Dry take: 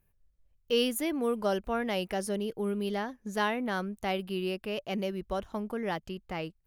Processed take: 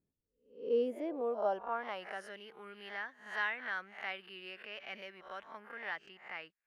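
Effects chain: reverse spectral sustain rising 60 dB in 0.44 s; band-pass sweep 280 Hz -> 1.8 kHz, 0.42–2.36 s

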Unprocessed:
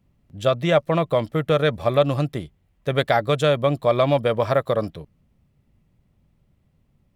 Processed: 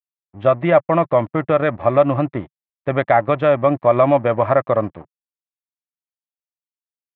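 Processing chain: in parallel at -3 dB: peak limiter -14.5 dBFS, peak gain reduction 9 dB; on the sum: crossover distortion -35.5 dBFS; cabinet simulation 110–2000 Hz, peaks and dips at 150 Hz -9 dB, 220 Hz -4 dB, 450 Hz -10 dB, 1.5 kHz -6 dB; trim +5 dB

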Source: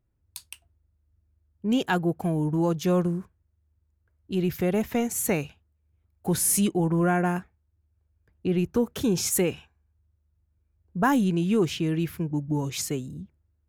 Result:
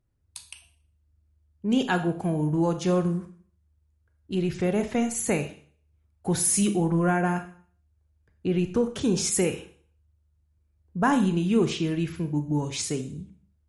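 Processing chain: Schroeder reverb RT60 0.48 s, combs from 27 ms, DRR 8 dB; MP3 48 kbps 48 kHz

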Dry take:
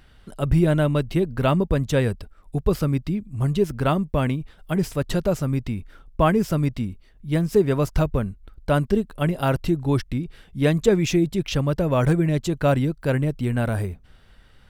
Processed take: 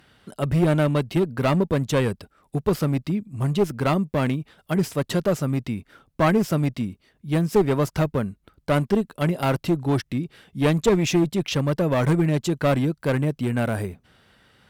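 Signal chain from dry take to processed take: high-pass 130 Hz 12 dB/octave; one-sided clip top -19.5 dBFS; trim +1.5 dB

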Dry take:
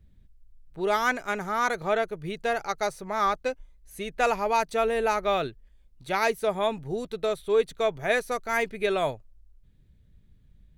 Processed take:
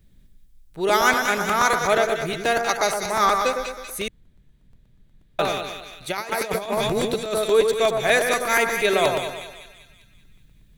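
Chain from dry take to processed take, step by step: treble shelf 3.6 kHz +10 dB; two-band feedback delay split 1.7 kHz, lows 107 ms, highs 192 ms, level -5 dB; 4.08–5.39 s: room tone; 6.10–7.44 s: compressor with a negative ratio -28 dBFS, ratio -0.5; peaking EQ 67 Hz -8.5 dB 1.2 oct; crackling interface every 0.12 s, samples 128, repeat, from 0.89 s; trim +4.5 dB

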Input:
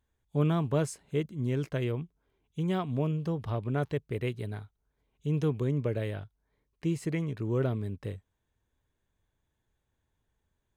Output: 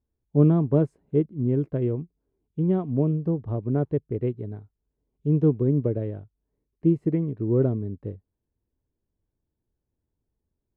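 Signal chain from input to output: FFT filter 140 Hz 0 dB, 320 Hz +4 dB, 5.8 kHz -29 dB; upward expansion 1.5:1, over -43 dBFS; trim +8.5 dB

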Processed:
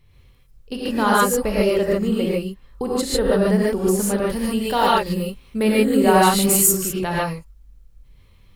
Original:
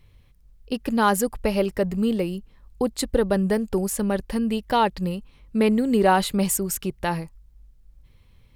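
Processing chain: 4.23–6.68 s: treble shelf 7 kHz +10 dB; gated-style reverb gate 170 ms rising, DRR -6 dB; trim -2 dB

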